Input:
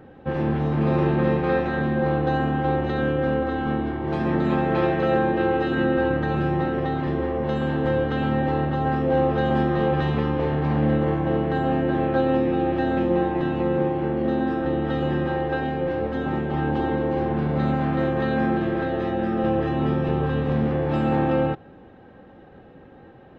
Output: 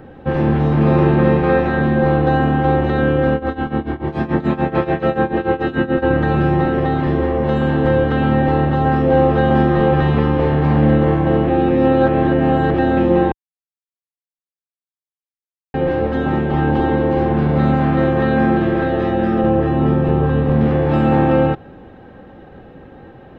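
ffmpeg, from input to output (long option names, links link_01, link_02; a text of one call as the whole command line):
ffmpeg -i in.wav -filter_complex "[0:a]asplit=3[link_01][link_02][link_03];[link_01]afade=type=out:start_time=3.3:duration=0.02[link_04];[link_02]tremolo=f=6.9:d=0.87,afade=type=in:start_time=3.3:duration=0.02,afade=type=out:start_time=6.02:duration=0.02[link_05];[link_03]afade=type=in:start_time=6.02:duration=0.02[link_06];[link_04][link_05][link_06]amix=inputs=3:normalize=0,asettb=1/sr,asplit=3[link_07][link_08][link_09];[link_07]atrim=end=19.414[link_10];[link_08]atrim=start=19.41:end=20.61,asetpts=PTS-STARTPTS,afade=type=in:duration=0.004:curve=qsin,afade=type=out:start_time=1.196:duration=0.004:curve=qsin,highshelf=frequency=2500:gain=-10[link_11];[link_09]atrim=start=20.606[link_12];[link_10][link_11]acrossfade=duration=0.004:curve1=hsin:curve2=qsin[link_13];[link_13][link_12]acrossfade=duration=0.004:curve1=qsin:curve2=hsin,asplit=5[link_14][link_15][link_16][link_17][link_18];[link_14]atrim=end=11.482[link_19];[link_15]atrim=start=11.478:end=12.742,asetpts=PTS-STARTPTS,areverse[link_20];[link_16]atrim=start=12.738:end=13.32,asetpts=PTS-STARTPTS,afade=type=out:start_time=0.578:duration=0.004:curve=hsin[link_21];[link_17]atrim=start=13.32:end=15.74,asetpts=PTS-STARTPTS,volume=0[link_22];[link_18]atrim=start=15.74,asetpts=PTS-STARTPTS,afade=type=in:duration=0.004:curve=hsin[link_23];[link_19][link_20]acrossfade=duration=0.004:curve1=hsin:curve2=hsin[link_24];[link_21][link_22][link_23]concat=n=3:v=0:a=1[link_25];[link_24][link_25]acrossfade=duration=0.004:curve1=hsin:curve2=hsin,acrossover=split=2900[link_26][link_27];[link_27]acompressor=threshold=-50dB:ratio=4:attack=1:release=60[link_28];[link_26][link_28]amix=inputs=2:normalize=0,lowshelf=frequency=61:gain=6.5,volume=7dB" out.wav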